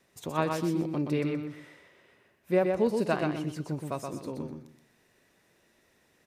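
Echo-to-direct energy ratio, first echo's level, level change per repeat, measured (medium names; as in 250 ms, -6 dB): -4.0 dB, -4.5 dB, -11.5 dB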